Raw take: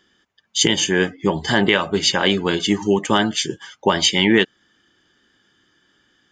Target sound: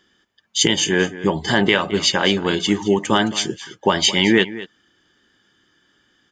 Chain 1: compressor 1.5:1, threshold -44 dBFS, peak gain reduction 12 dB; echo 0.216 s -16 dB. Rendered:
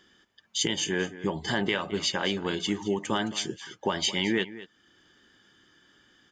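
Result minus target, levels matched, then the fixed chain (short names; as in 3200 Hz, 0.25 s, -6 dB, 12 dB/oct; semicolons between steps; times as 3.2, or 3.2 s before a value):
compressor: peak gain reduction +12 dB
echo 0.216 s -16 dB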